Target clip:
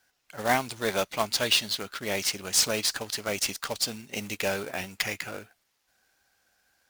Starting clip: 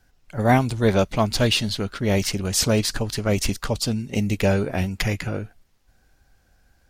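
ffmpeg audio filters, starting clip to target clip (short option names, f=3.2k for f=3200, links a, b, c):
-af "highpass=f=1.1k:p=1,acrusher=bits=2:mode=log:mix=0:aa=0.000001,volume=-1dB"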